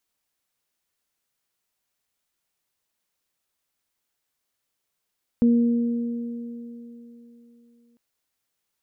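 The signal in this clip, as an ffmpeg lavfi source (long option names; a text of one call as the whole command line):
ffmpeg -f lavfi -i "aevalsrc='0.211*pow(10,-3*t/3.4)*sin(2*PI*236*t)+0.0447*pow(10,-3*t/3.65)*sin(2*PI*472*t)':duration=2.55:sample_rate=44100" out.wav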